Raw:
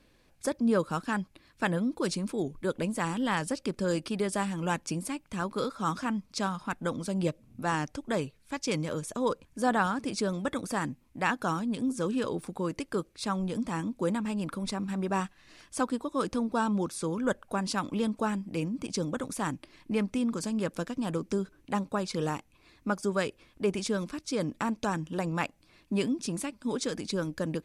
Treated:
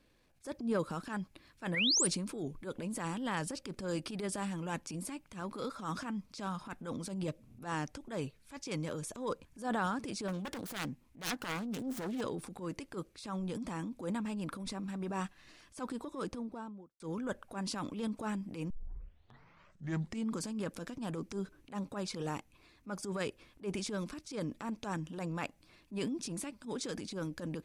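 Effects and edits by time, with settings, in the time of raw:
1.74–2.07 s: painted sound rise 1.8–10 kHz -23 dBFS
10.28–12.21 s: self-modulated delay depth 0.84 ms
16.02–17.00 s: studio fade out
18.70 s: tape start 1.65 s
whole clip: transient shaper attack -11 dB, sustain +5 dB; trim -6 dB

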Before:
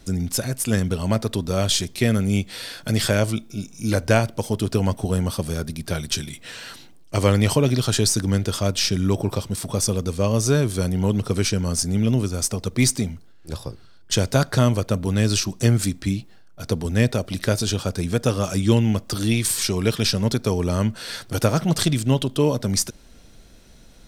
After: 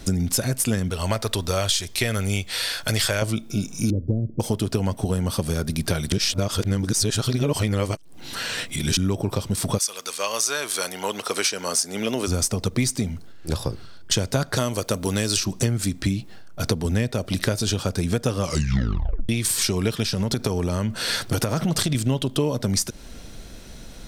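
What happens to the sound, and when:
0.90–3.22 s: peaking EQ 210 Hz -13 dB 2.1 oct
3.90–4.40 s: inverse Chebyshev low-pass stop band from 1 kHz, stop band 50 dB
6.12–8.97 s: reverse
9.77–12.27 s: high-pass 1.5 kHz -> 450 Hz
14.56–15.37 s: tone controls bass -8 dB, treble +7 dB
18.40 s: tape stop 0.89 s
20.03–21.95 s: compression, threshold -20 dBFS
whole clip: compression 6:1, threshold -28 dBFS; trim +8.5 dB

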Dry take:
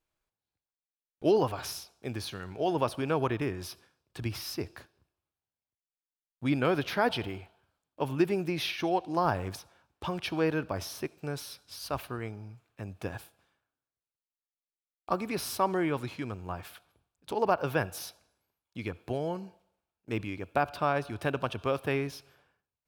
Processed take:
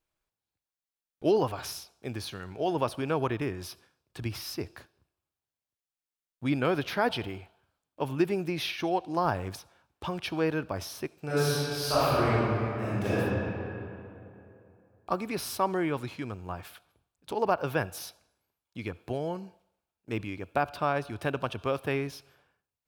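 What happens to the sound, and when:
11.25–13.16 s: reverb throw, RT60 2.8 s, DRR -12 dB

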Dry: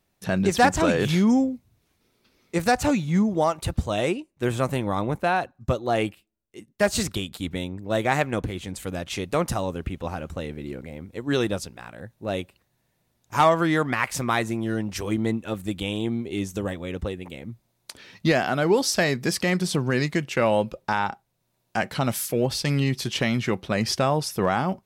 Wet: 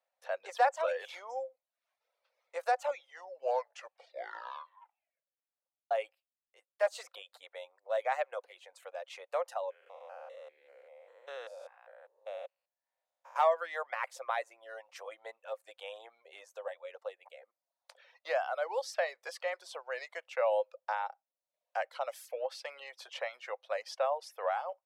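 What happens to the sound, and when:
2.86 s: tape stop 3.05 s
9.70–13.36 s: spectrogram pixelated in time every 200 ms
whole clip: Chebyshev high-pass 520 Hz, order 6; reverb removal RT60 0.57 s; tilt EQ -4 dB/octave; trim -8.5 dB

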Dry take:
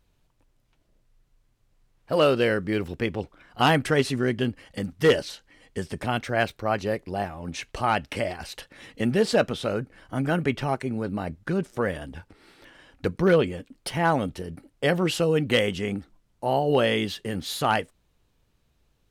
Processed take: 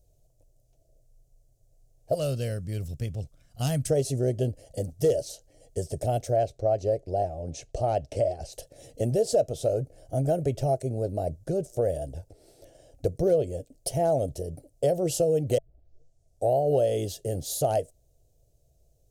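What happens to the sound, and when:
2.14–3.90 s: high-order bell 510 Hz -15.5 dB
6.36–8.53 s: distance through air 72 m
15.58 s: tape start 0.97 s
whole clip: FFT filter 140 Hz 0 dB, 200 Hz -15 dB, 660 Hz +5 dB, 1 kHz -26 dB, 2 kHz -24 dB, 3.8 kHz -14 dB, 6.4 kHz +1 dB; compression 3:1, threshold -25 dBFS; trim +4 dB

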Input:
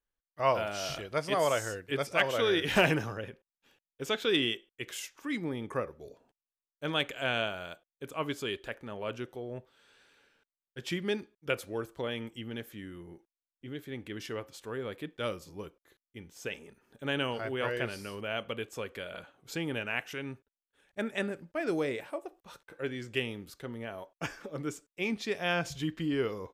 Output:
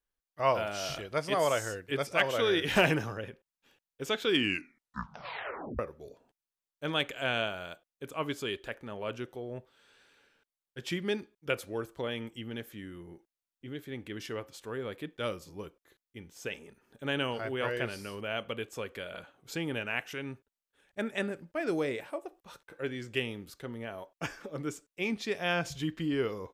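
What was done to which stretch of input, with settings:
4.25 s: tape stop 1.54 s

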